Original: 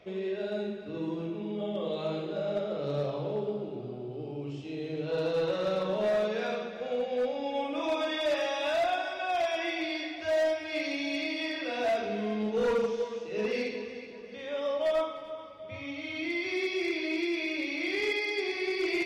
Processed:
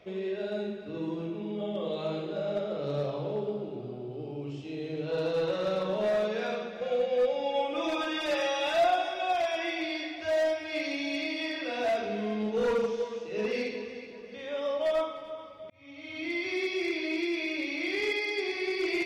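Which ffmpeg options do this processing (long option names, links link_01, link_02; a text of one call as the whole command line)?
ffmpeg -i in.wav -filter_complex "[0:a]asettb=1/sr,asplit=3[link_01][link_02][link_03];[link_01]atrim=end=6.814[link_04];[link_02]atrim=start=6.81:end=9.33,asetpts=PTS-STARTPTS,afade=type=in:duration=0.004:curve=qsin,afade=type=out:start_time=2.516:duration=0.004:curve=qsin,aecho=1:1:5.7:0.81,atrim=end_sample=111132[link_05];[link_03]atrim=start=9.326[link_06];[link_04][link_05]acrossfade=duration=0.004:curve1=hsin:curve2=qsin[link_07];[link_07][link_06]acrossfade=duration=0.004:curve1=qsin:curve2=hsin,asplit=2[link_08][link_09];[link_08]atrim=end=15.7,asetpts=PTS-STARTPTS,afade=type=out:start_time=15.696:duration=0.004:curve=hsin[link_10];[link_09]atrim=start=15.7,asetpts=PTS-STARTPTS,afade=type=in:duration=0.64[link_11];[link_10][link_11]concat=n=2:v=0:a=1" out.wav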